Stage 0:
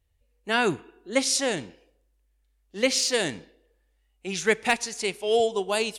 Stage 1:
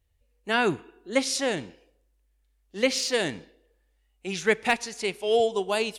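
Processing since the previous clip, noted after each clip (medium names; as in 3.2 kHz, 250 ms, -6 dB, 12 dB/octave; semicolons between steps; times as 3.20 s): dynamic bell 8.2 kHz, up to -6 dB, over -41 dBFS, Q 0.73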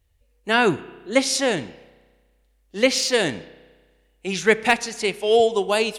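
spring tank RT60 1.5 s, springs 32 ms, chirp 35 ms, DRR 19 dB; trim +5.5 dB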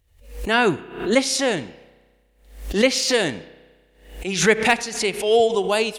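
swell ahead of each attack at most 100 dB/s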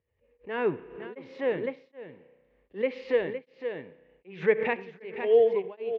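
cabinet simulation 140–2200 Hz, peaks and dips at 210 Hz -4 dB, 310 Hz -4 dB, 470 Hz +7 dB, 720 Hz -7 dB, 1.4 kHz -9 dB; delay 512 ms -6.5 dB; tremolo of two beating tones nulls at 1.3 Hz; trim -7.5 dB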